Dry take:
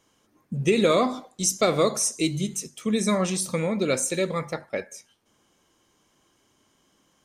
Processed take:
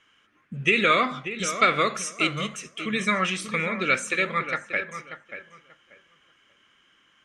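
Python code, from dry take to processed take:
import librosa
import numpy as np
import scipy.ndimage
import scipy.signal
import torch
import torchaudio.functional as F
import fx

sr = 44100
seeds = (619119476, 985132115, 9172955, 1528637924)

p1 = scipy.signal.sosfilt(scipy.signal.butter(2, 7900.0, 'lowpass', fs=sr, output='sos'), x)
p2 = fx.band_shelf(p1, sr, hz=2000.0, db=16.0, octaves=1.7)
p3 = p2 + fx.echo_filtered(p2, sr, ms=586, feedback_pct=22, hz=2400.0, wet_db=-10.0, dry=0)
y = F.gain(torch.from_numpy(p3), -5.5).numpy()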